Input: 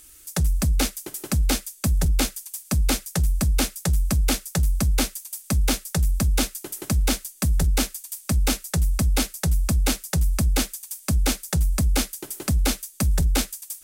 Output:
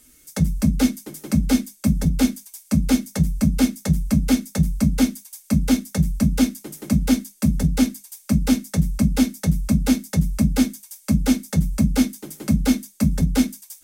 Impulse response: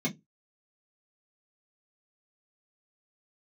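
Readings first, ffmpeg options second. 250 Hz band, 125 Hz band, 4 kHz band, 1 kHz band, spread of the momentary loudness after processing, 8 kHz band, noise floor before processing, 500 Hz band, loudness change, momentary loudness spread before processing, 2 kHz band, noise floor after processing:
+10.5 dB, +2.0 dB, −3.5 dB, −2.5 dB, 4 LU, −4.0 dB, −49 dBFS, +1.0 dB, +3.0 dB, 5 LU, −2.0 dB, −53 dBFS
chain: -filter_complex "[0:a]asplit=2[link_01][link_02];[1:a]atrim=start_sample=2205,highshelf=frequency=12000:gain=12[link_03];[link_02][link_03]afir=irnorm=-1:irlink=0,volume=-6dB[link_04];[link_01][link_04]amix=inputs=2:normalize=0,volume=-3dB"

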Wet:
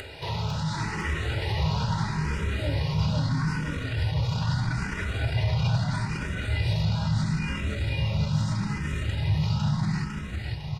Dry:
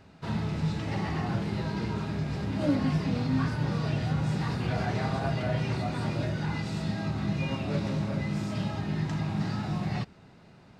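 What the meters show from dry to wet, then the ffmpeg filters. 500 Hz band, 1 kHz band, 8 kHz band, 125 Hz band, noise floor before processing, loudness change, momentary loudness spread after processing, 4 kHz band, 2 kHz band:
−2.5 dB, +1.0 dB, +6.5 dB, +4.5 dB, −54 dBFS, +2.5 dB, 5 LU, +6.5 dB, +5.0 dB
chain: -filter_complex "[0:a]asplit=2[link_01][link_02];[link_02]aecho=0:1:810:0.0891[link_03];[link_01][link_03]amix=inputs=2:normalize=0,asubboost=boost=9.5:cutoff=130,acompressor=mode=upward:threshold=-32dB:ratio=2.5,tiltshelf=frequency=660:gain=-5,acontrast=88,alimiter=limit=-18dB:level=0:latency=1:release=20,aresample=32000,aresample=44100,aecho=1:1:2.1:0.45,asplit=2[link_04][link_05];[link_05]aecho=0:1:503|1006|1509|2012|2515|3018|3521|4024:0.708|0.411|0.238|0.138|0.0801|0.0465|0.027|0.0156[link_06];[link_04][link_06]amix=inputs=2:normalize=0,asplit=2[link_07][link_08];[link_08]afreqshift=0.77[link_09];[link_07][link_09]amix=inputs=2:normalize=1,volume=-1.5dB"

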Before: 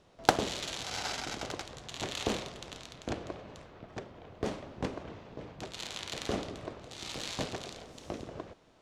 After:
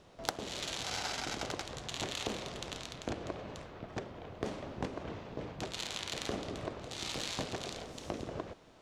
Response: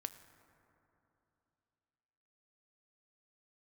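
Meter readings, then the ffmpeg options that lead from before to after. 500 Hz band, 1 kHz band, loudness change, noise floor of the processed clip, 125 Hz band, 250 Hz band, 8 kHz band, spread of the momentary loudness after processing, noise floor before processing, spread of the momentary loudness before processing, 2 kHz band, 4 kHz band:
−2.5 dB, −5.0 dB, −2.0 dB, −58 dBFS, −1.0 dB, −2.5 dB, −0.5 dB, 7 LU, −61 dBFS, 13 LU, −2.5 dB, −0.5 dB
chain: -af "acompressor=threshold=-37dB:ratio=6,volume=3.5dB"

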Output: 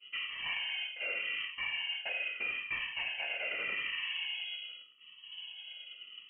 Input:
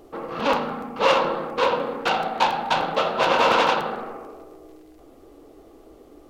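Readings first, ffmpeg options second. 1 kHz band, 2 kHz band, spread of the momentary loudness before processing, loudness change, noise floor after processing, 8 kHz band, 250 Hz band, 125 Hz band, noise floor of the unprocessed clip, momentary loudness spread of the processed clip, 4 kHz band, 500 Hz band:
−30.0 dB, −6.5 dB, 15 LU, −13.5 dB, −57 dBFS, below −35 dB, −31.5 dB, below −25 dB, −50 dBFS, 12 LU, −6.0 dB, −28.0 dB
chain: -af "afftfilt=real='re*pow(10,18/40*sin(2*PI*(1.7*log(max(b,1)*sr/1024/100)/log(2)-(0.83)*(pts-256)/sr)))':imag='im*pow(10,18/40*sin(2*PI*(1.7*log(max(b,1)*sr/1024/100)/log(2)-(0.83)*(pts-256)/sr)))':win_size=1024:overlap=0.75,lowpass=frequency=2800:width_type=q:width=0.5098,lowpass=frequency=2800:width_type=q:width=0.6013,lowpass=frequency=2800:width_type=q:width=0.9,lowpass=frequency=2800:width_type=q:width=2.563,afreqshift=-3300,agate=range=-33dB:threshold=-40dB:ratio=3:detection=peak,alimiter=limit=-9.5dB:level=0:latency=1:release=330,areverse,acompressor=threshold=-34dB:ratio=12,areverse"

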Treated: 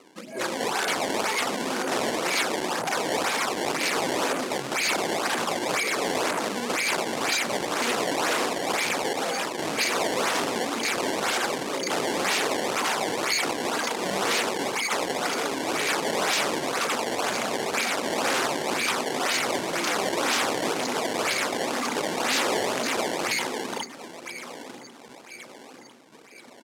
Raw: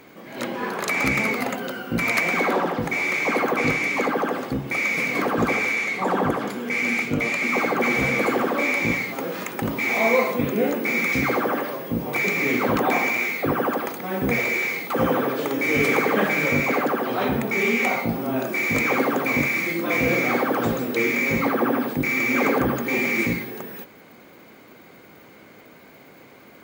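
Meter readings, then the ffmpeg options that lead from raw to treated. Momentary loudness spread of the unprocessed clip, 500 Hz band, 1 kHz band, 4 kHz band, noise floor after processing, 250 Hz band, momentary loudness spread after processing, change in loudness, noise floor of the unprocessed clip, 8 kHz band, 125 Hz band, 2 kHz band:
7 LU, −3.5 dB, −1.0 dB, +8.0 dB, −47 dBFS, −7.5 dB, 4 LU, −3.5 dB, −48 dBFS, +8.5 dB, −12.0 dB, −5.5 dB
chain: -af "afftdn=noise_reduction=18:noise_floor=-31,acompressor=threshold=-24dB:ratio=8,aphaser=in_gain=1:out_gain=1:delay=1.4:decay=0.65:speed=0.49:type=sinusoidal,aeval=exprs='0.376*(cos(1*acos(clip(val(0)/0.376,-1,1)))-cos(1*PI/2))+0.0237*(cos(5*acos(clip(val(0)/0.376,-1,1)))-cos(5*PI/2))+0.0596*(cos(8*acos(clip(val(0)/0.376,-1,1)))-cos(8*PI/2))':channel_layout=same,flanger=delay=0.4:depth=1.7:regen=-43:speed=1.1:shape=triangular,aecho=1:1:1044|2088|3132|4176:0.112|0.0606|0.0327|0.0177,acrusher=samples=20:mix=1:aa=0.000001:lfo=1:lforange=32:lforate=2,aeval=exprs='0.0473*(abs(mod(val(0)/0.0473+3,4)-2)-1)':channel_layout=same,crystalizer=i=1:c=0,highpass=320,lowpass=8000,volume=7.5dB"

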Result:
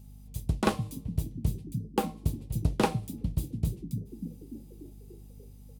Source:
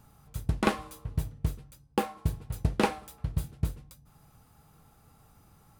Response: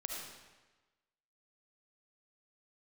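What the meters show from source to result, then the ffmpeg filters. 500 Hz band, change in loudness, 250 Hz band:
0.0 dB, 0.0 dB, +1.5 dB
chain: -filter_complex "[0:a]acrossover=split=170|2200[link_01][link_02][link_03];[link_01]asplit=8[link_04][link_05][link_06][link_07][link_08][link_09][link_10][link_11];[link_05]adelay=293,afreqshift=57,volume=-4dB[link_12];[link_06]adelay=586,afreqshift=114,volume=-9.2dB[link_13];[link_07]adelay=879,afreqshift=171,volume=-14.4dB[link_14];[link_08]adelay=1172,afreqshift=228,volume=-19.6dB[link_15];[link_09]adelay=1465,afreqshift=285,volume=-24.8dB[link_16];[link_10]adelay=1758,afreqshift=342,volume=-30dB[link_17];[link_11]adelay=2051,afreqshift=399,volume=-35.2dB[link_18];[link_04][link_12][link_13][link_14][link_15][link_16][link_17][link_18]amix=inputs=8:normalize=0[link_19];[link_02]adynamicsmooth=sensitivity=2:basefreq=530[link_20];[link_19][link_20][link_03]amix=inputs=3:normalize=0,aeval=exprs='val(0)+0.00398*(sin(2*PI*50*n/s)+sin(2*PI*2*50*n/s)/2+sin(2*PI*3*50*n/s)/3+sin(2*PI*4*50*n/s)/4+sin(2*PI*5*50*n/s)/5)':channel_layout=same,equalizer=frequency=15000:width_type=o:width=1.4:gain=2.5"

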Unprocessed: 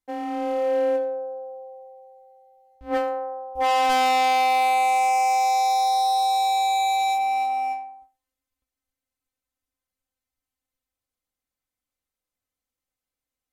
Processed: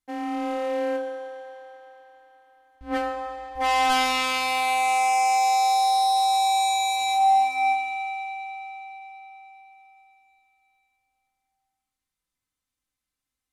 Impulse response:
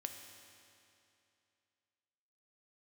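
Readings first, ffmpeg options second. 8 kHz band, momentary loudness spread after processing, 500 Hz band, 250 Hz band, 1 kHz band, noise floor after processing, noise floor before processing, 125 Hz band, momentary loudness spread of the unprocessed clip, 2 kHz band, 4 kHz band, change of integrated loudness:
+3.5 dB, 16 LU, −5.0 dB, +1.0 dB, −1.0 dB, below −85 dBFS, below −85 dBFS, can't be measured, 13 LU, +2.0 dB, +2.5 dB, −1.0 dB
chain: -filter_complex "[0:a]equalizer=frequency=550:width_type=o:width=0.94:gain=-8.5[link_01];[1:a]atrim=start_sample=2205,asetrate=23814,aresample=44100[link_02];[link_01][link_02]afir=irnorm=-1:irlink=0,volume=2dB"

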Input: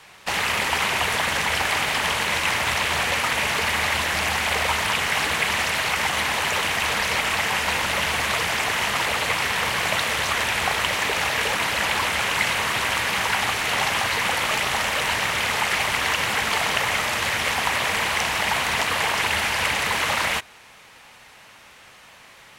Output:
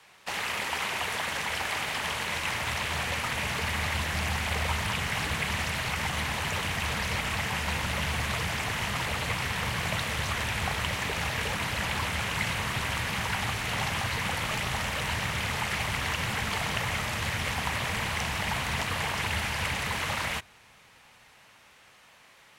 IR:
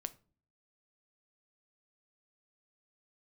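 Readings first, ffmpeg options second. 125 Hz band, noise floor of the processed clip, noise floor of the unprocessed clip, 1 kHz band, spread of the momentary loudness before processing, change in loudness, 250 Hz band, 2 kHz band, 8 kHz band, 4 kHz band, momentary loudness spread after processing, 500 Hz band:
+3.0 dB, −57 dBFS, −48 dBFS, −8.5 dB, 1 LU, −8.0 dB, −2.0 dB, −8.5 dB, −8.5 dB, −8.5 dB, 1 LU, −8.0 dB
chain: -filter_complex "[0:a]lowshelf=frequency=80:gain=-5.5,acrossover=split=170[link_01][link_02];[link_01]dynaudnorm=framelen=470:gausssize=13:maxgain=16dB[link_03];[link_03][link_02]amix=inputs=2:normalize=0,volume=-8.5dB"

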